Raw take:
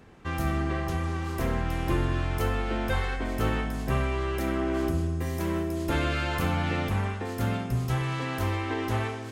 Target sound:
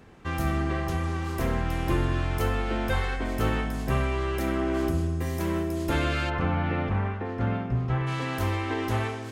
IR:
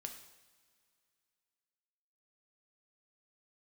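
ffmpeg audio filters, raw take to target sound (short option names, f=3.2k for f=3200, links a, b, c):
-filter_complex "[0:a]asplit=3[a][b][c];[a]afade=t=out:st=6.29:d=0.02[d];[b]lowpass=2.1k,afade=t=in:st=6.29:d=0.02,afade=t=out:st=8.06:d=0.02[e];[c]afade=t=in:st=8.06:d=0.02[f];[d][e][f]amix=inputs=3:normalize=0,volume=1dB"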